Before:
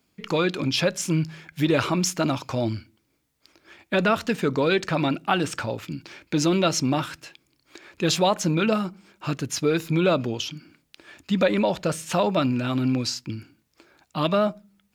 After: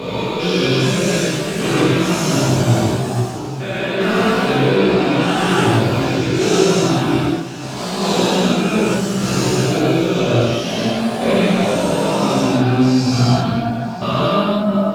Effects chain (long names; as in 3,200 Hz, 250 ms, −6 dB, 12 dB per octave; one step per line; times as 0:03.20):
spectrum averaged block by block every 400 ms
in parallel at −1 dB: brickwall limiter −22 dBFS, peak gain reduction 8.5 dB
on the sum: speech leveller within 4 dB 0.5 s
delay with pitch and tempo change per echo 633 ms, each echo +2 semitones, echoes 2, each echo −6 dB
on a send: delay that swaps between a low-pass and a high-pass 500 ms, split 1,100 Hz, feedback 54%, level −11.5 dB
on the sum: reverb whose tail is shaped and stops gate 230 ms flat, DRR −7.5 dB
multi-voice chorus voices 4, 0.21 Hz, delay 17 ms, depth 1.7 ms
level +3 dB